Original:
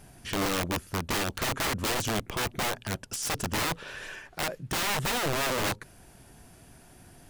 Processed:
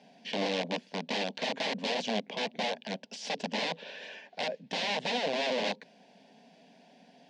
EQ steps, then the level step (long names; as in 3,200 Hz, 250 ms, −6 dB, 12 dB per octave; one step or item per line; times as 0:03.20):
Butterworth high-pass 200 Hz 36 dB per octave
low-pass filter 4,500 Hz 24 dB per octave
phaser with its sweep stopped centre 340 Hz, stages 6
+2.0 dB